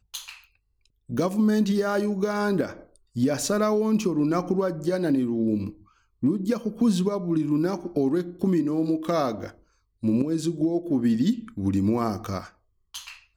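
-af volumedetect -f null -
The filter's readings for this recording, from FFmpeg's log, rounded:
mean_volume: -25.3 dB
max_volume: -11.0 dB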